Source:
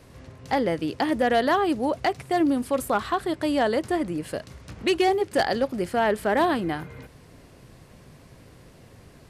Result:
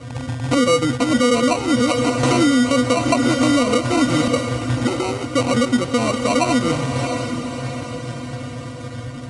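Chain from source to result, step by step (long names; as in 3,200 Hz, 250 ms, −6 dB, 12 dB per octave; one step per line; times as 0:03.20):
loose part that buzzes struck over −42 dBFS, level −29 dBFS
parametric band 2,500 Hz +11.5 dB 0.31 octaves
in parallel at +2 dB: downward compressor, threshold −32 dBFS, peak gain reduction 15.5 dB
on the sum: resonances in every octave B, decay 0.12 s
decimation without filtering 26×
on a send: feedback delay with all-pass diffusion 677 ms, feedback 53%, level −10 dB
on the sum: downsampling to 22,050 Hz
boost into a limiter +25.5 dB
0:02.23–0:04.28: multiband upward and downward compressor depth 100%
level −7.5 dB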